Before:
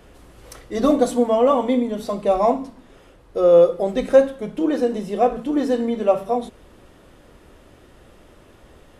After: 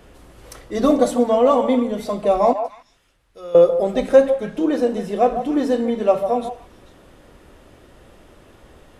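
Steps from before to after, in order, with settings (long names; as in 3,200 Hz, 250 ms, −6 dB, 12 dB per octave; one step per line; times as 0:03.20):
0:02.53–0:03.55: guitar amp tone stack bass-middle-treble 5-5-5
on a send: echo through a band-pass that steps 147 ms, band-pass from 720 Hz, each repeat 1.4 octaves, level −7 dB
on the sum: level +1 dB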